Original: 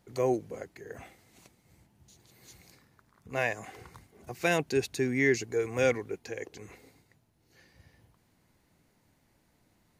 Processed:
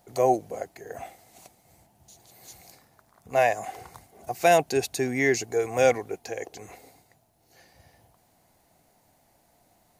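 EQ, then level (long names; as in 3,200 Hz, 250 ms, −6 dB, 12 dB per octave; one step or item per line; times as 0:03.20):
parametric band 710 Hz +14.5 dB 0.71 octaves
high-shelf EQ 5,100 Hz +11.5 dB
0.0 dB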